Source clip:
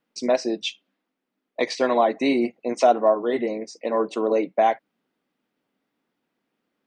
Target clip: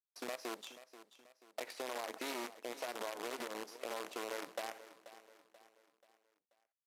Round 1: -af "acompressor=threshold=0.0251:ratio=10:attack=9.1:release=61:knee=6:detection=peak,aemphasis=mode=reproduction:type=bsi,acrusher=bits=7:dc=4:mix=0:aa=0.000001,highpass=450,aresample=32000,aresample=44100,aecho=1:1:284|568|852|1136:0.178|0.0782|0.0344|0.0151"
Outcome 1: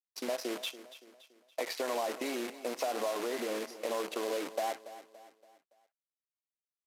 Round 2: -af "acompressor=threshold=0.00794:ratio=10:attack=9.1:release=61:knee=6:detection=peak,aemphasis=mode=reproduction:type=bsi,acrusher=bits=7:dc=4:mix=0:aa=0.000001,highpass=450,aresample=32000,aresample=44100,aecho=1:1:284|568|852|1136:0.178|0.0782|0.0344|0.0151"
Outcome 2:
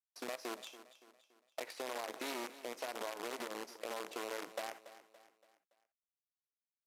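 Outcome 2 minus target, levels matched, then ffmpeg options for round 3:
echo 200 ms early
-af "acompressor=threshold=0.00794:ratio=10:attack=9.1:release=61:knee=6:detection=peak,aemphasis=mode=reproduction:type=bsi,acrusher=bits=7:dc=4:mix=0:aa=0.000001,highpass=450,aresample=32000,aresample=44100,aecho=1:1:484|968|1452|1936:0.178|0.0782|0.0344|0.0151"

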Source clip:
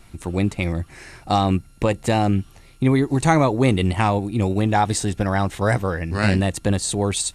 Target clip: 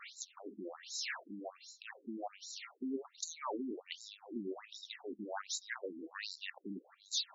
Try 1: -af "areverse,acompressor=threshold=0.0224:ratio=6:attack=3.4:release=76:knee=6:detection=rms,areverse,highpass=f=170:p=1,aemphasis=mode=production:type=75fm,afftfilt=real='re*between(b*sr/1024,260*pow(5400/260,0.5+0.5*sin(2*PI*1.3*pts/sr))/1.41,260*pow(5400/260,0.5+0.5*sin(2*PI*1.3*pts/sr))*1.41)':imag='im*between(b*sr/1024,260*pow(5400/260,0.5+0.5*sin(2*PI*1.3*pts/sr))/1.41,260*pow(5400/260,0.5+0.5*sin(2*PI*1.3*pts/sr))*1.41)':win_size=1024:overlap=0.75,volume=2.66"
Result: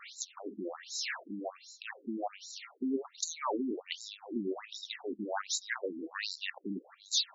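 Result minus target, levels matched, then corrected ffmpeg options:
compression: peak gain reduction -6.5 dB
-af "areverse,acompressor=threshold=0.00944:ratio=6:attack=3.4:release=76:knee=6:detection=rms,areverse,highpass=f=170:p=1,aemphasis=mode=production:type=75fm,afftfilt=real='re*between(b*sr/1024,260*pow(5400/260,0.5+0.5*sin(2*PI*1.3*pts/sr))/1.41,260*pow(5400/260,0.5+0.5*sin(2*PI*1.3*pts/sr))*1.41)':imag='im*between(b*sr/1024,260*pow(5400/260,0.5+0.5*sin(2*PI*1.3*pts/sr))/1.41,260*pow(5400/260,0.5+0.5*sin(2*PI*1.3*pts/sr))*1.41)':win_size=1024:overlap=0.75,volume=2.66"

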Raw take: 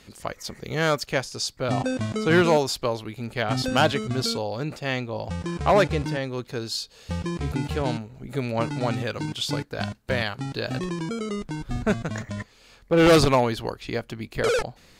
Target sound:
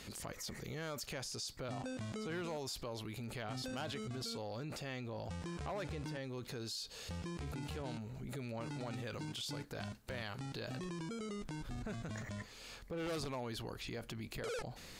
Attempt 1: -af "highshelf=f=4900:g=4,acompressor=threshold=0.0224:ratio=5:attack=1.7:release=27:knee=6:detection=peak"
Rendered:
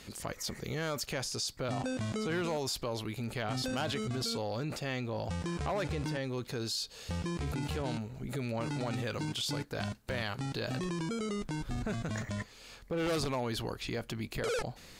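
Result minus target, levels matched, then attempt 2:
compression: peak gain reduction -8 dB
-af "highshelf=f=4900:g=4,acompressor=threshold=0.00708:ratio=5:attack=1.7:release=27:knee=6:detection=peak"

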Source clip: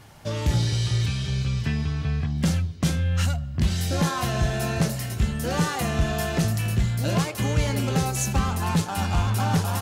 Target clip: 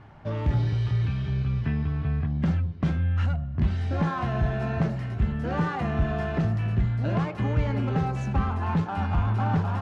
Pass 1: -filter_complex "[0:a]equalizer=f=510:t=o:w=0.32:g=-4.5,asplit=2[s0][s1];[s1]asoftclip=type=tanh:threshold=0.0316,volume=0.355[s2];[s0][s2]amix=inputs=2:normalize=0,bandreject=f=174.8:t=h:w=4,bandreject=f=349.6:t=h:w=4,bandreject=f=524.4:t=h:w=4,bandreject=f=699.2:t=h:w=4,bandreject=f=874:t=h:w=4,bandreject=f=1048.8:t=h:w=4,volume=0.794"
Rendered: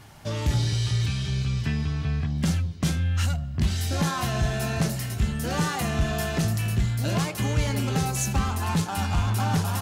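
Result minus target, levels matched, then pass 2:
2 kHz band +3.0 dB
-filter_complex "[0:a]lowpass=1700,equalizer=f=510:t=o:w=0.32:g=-4.5,asplit=2[s0][s1];[s1]asoftclip=type=tanh:threshold=0.0316,volume=0.355[s2];[s0][s2]amix=inputs=2:normalize=0,bandreject=f=174.8:t=h:w=4,bandreject=f=349.6:t=h:w=4,bandreject=f=524.4:t=h:w=4,bandreject=f=699.2:t=h:w=4,bandreject=f=874:t=h:w=4,bandreject=f=1048.8:t=h:w=4,volume=0.794"

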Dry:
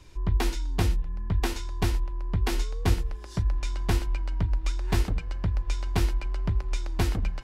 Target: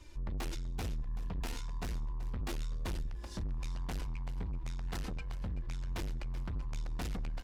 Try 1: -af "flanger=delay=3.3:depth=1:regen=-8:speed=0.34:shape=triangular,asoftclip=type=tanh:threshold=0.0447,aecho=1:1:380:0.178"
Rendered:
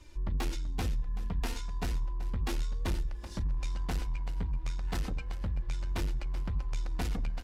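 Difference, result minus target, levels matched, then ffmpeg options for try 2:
saturation: distortion -5 dB
-af "flanger=delay=3.3:depth=1:regen=-8:speed=0.34:shape=triangular,asoftclip=type=tanh:threshold=0.0188,aecho=1:1:380:0.178"

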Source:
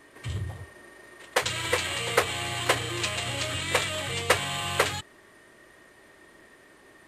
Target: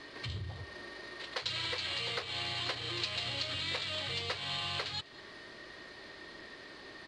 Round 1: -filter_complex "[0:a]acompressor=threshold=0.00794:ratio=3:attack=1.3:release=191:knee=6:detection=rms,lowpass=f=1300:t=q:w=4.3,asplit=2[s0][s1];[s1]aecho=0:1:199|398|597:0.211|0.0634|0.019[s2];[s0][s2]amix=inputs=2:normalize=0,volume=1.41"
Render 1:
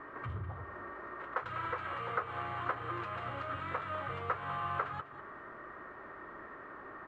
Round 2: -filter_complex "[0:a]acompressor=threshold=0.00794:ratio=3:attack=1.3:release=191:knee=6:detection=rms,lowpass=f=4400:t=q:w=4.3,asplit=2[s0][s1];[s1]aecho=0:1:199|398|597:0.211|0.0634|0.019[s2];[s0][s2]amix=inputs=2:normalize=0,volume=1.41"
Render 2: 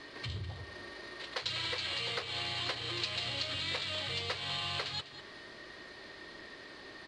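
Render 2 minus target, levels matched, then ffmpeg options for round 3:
echo-to-direct +7 dB
-filter_complex "[0:a]acompressor=threshold=0.00794:ratio=3:attack=1.3:release=191:knee=6:detection=rms,lowpass=f=4400:t=q:w=4.3,asplit=2[s0][s1];[s1]aecho=0:1:199|398:0.0944|0.0283[s2];[s0][s2]amix=inputs=2:normalize=0,volume=1.41"

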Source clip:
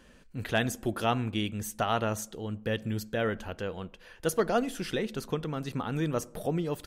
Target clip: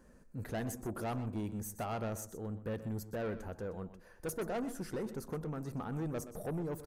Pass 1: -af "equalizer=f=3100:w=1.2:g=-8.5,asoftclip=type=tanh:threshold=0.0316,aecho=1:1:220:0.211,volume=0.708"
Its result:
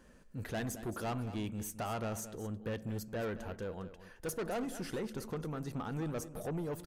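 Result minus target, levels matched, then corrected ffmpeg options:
echo 96 ms late; 4 kHz band +5.0 dB
-af "equalizer=f=3100:w=1.2:g=-19.5,asoftclip=type=tanh:threshold=0.0316,aecho=1:1:124:0.211,volume=0.708"

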